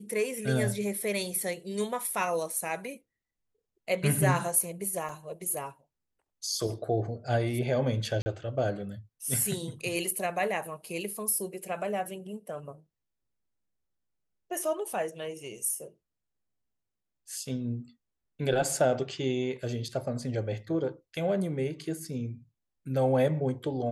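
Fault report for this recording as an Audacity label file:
5.090000	5.090000	gap 3.2 ms
8.220000	8.260000	gap 40 ms

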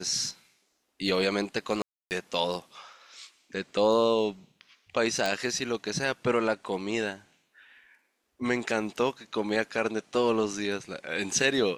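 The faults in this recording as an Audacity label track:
1.820000	2.110000	gap 0.289 s
5.260000	5.260000	pop

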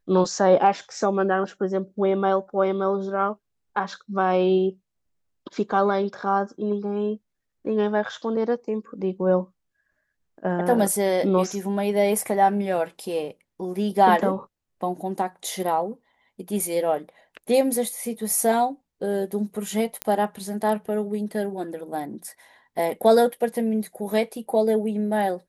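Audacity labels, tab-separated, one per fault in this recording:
20.020000	20.020000	pop -9 dBFS

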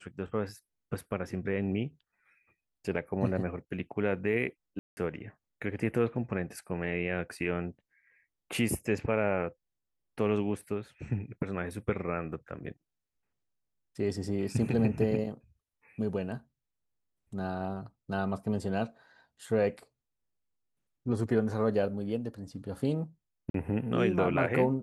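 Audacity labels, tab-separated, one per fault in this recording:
4.790000	4.970000	gap 0.18 s
23.500000	23.540000	gap 43 ms

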